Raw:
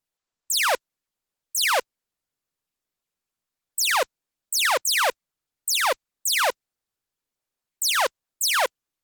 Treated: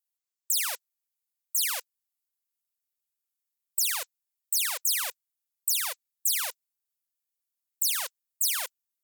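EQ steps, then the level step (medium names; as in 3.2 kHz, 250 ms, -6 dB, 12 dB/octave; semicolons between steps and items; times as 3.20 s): differentiator; peaking EQ 5.4 kHz -3 dB 2.7 oct; 0.0 dB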